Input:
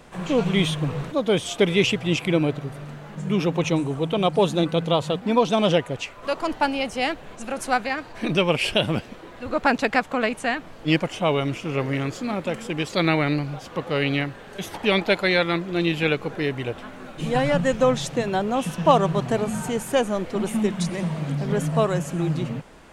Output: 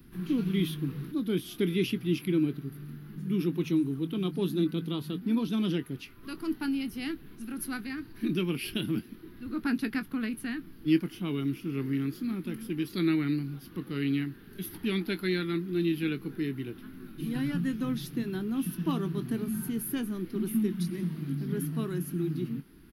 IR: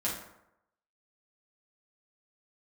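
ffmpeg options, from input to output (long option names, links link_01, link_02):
-filter_complex "[0:a]firequalizer=gain_entry='entry(340,0);entry(550,-29);entry(1400,-11);entry(2300,-13);entry(4800,-8);entry(7600,-25);entry(11000,8)':delay=0.05:min_phase=1,acrossover=split=170[link_01][link_02];[link_01]acompressor=threshold=-45dB:ratio=6[link_03];[link_03][link_02]amix=inputs=2:normalize=0,asplit=2[link_04][link_05];[link_05]adelay=22,volume=-12.5dB[link_06];[link_04][link_06]amix=inputs=2:normalize=0,volume=-2dB"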